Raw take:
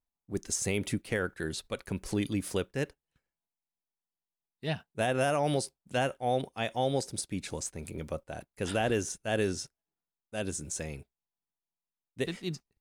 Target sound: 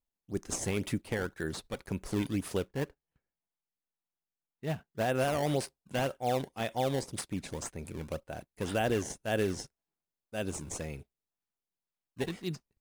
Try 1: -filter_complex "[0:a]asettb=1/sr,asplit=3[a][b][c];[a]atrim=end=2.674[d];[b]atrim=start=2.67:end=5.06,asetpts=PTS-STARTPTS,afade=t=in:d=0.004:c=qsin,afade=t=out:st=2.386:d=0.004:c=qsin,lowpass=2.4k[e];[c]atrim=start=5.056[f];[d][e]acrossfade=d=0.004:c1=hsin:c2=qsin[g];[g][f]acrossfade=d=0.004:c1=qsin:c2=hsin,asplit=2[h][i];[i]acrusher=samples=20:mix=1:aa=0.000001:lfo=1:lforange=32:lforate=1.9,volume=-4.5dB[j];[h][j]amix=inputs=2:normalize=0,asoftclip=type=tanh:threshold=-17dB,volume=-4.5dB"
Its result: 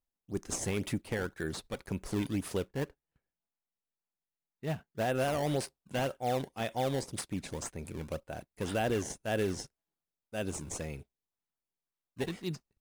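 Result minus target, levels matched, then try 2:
soft clip: distortion +22 dB
-filter_complex "[0:a]asettb=1/sr,asplit=3[a][b][c];[a]atrim=end=2.674[d];[b]atrim=start=2.67:end=5.06,asetpts=PTS-STARTPTS,afade=t=in:d=0.004:c=qsin,afade=t=out:st=2.386:d=0.004:c=qsin,lowpass=2.4k[e];[c]atrim=start=5.056[f];[d][e]acrossfade=d=0.004:c1=hsin:c2=qsin[g];[g][f]acrossfade=d=0.004:c1=qsin:c2=hsin,asplit=2[h][i];[i]acrusher=samples=20:mix=1:aa=0.000001:lfo=1:lforange=32:lforate=1.9,volume=-4.5dB[j];[h][j]amix=inputs=2:normalize=0,asoftclip=type=tanh:threshold=-5dB,volume=-4.5dB"

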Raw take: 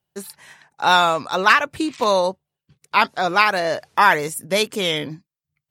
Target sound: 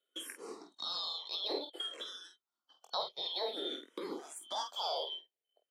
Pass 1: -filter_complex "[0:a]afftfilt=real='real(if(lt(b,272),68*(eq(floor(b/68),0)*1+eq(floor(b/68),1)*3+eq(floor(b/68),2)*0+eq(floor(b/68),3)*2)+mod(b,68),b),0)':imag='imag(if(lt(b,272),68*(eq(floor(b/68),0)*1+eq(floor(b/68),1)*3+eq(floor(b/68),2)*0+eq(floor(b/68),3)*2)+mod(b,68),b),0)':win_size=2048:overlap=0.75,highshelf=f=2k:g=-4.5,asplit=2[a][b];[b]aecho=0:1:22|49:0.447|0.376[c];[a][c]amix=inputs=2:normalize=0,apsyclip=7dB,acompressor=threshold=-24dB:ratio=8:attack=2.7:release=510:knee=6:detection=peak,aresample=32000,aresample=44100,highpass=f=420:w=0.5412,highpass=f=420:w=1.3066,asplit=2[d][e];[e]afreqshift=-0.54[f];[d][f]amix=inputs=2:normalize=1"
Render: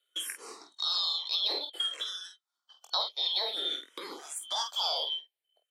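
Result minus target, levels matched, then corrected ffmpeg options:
500 Hz band -10.0 dB
-filter_complex "[0:a]afftfilt=real='real(if(lt(b,272),68*(eq(floor(b/68),0)*1+eq(floor(b/68),1)*3+eq(floor(b/68),2)*0+eq(floor(b/68),3)*2)+mod(b,68),b),0)':imag='imag(if(lt(b,272),68*(eq(floor(b/68),0)*1+eq(floor(b/68),1)*3+eq(floor(b/68),2)*0+eq(floor(b/68),3)*2)+mod(b,68),b),0)':win_size=2048:overlap=0.75,highshelf=f=2k:g=-4.5,asplit=2[a][b];[b]aecho=0:1:22|49:0.447|0.376[c];[a][c]amix=inputs=2:normalize=0,apsyclip=7dB,acompressor=threshold=-24dB:ratio=8:attack=2.7:release=510:knee=6:detection=peak,tiltshelf=f=670:g=9.5,aresample=32000,aresample=44100,highpass=f=420:w=0.5412,highpass=f=420:w=1.3066,asplit=2[d][e];[e]afreqshift=-0.54[f];[d][f]amix=inputs=2:normalize=1"

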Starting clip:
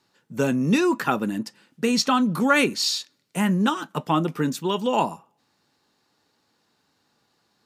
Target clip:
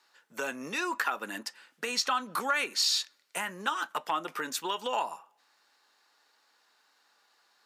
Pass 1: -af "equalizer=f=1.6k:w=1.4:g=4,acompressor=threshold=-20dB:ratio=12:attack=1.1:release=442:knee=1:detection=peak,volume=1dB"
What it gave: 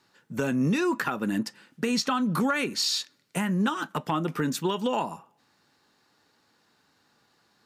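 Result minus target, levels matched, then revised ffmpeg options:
500 Hz band +3.5 dB
-af "equalizer=f=1.6k:w=1.4:g=4,acompressor=threshold=-20dB:ratio=12:attack=1.1:release=442:knee=1:detection=peak,highpass=670,volume=1dB"

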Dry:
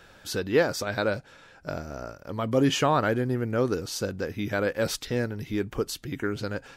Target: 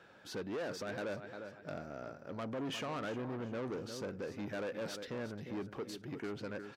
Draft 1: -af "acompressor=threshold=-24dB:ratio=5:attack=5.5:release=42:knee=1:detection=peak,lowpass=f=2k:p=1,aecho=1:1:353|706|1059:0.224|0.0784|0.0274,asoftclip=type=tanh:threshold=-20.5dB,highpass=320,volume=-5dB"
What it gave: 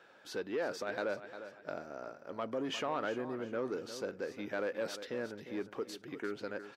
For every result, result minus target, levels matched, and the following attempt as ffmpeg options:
125 Hz band -9.5 dB; soft clip: distortion -11 dB
-af "acompressor=threshold=-24dB:ratio=5:attack=5.5:release=42:knee=1:detection=peak,lowpass=f=2k:p=1,aecho=1:1:353|706|1059:0.224|0.0784|0.0274,asoftclip=type=tanh:threshold=-20.5dB,highpass=150,volume=-5dB"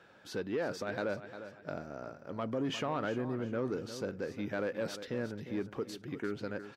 soft clip: distortion -11 dB
-af "acompressor=threshold=-24dB:ratio=5:attack=5.5:release=42:knee=1:detection=peak,lowpass=f=2k:p=1,aecho=1:1:353|706|1059:0.224|0.0784|0.0274,asoftclip=type=tanh:threshold=-30.5dB,highpass=150,volume=-5dB"

